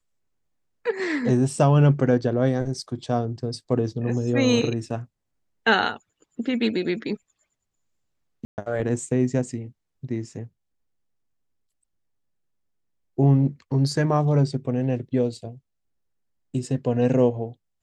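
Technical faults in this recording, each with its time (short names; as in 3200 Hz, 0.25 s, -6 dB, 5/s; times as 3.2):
8.45–8.58 gap 0.129 s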